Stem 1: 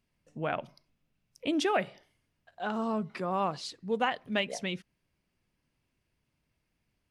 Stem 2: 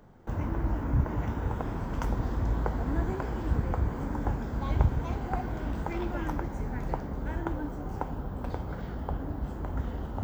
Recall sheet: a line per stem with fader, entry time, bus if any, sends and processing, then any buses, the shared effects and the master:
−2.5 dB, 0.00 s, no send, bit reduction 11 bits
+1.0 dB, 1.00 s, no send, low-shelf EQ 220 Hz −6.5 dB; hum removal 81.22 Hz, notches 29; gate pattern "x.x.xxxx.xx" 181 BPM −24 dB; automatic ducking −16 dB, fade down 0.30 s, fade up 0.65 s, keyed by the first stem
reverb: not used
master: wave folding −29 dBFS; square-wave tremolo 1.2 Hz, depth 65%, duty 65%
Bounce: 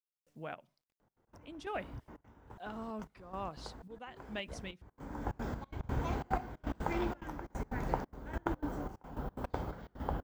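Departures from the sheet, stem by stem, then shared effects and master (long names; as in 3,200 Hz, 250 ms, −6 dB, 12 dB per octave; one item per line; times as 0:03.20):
stem 1 −2.5 dB → −11.0 dB
master: missing wave folding −29 dBFS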